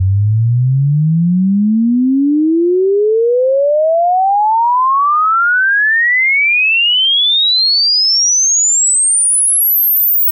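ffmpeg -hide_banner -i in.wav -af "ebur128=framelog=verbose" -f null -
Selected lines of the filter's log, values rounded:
Integrated loudness:
  I:          -9.8 LUFS
  Threshold: -19.8 LUFS
Loudness range:
  LRA:         4.2 LU
  Threshold: -29.8 LUFS
  LRA low:   -12.1 LUFS
  LRA high:   -8.0 LUFS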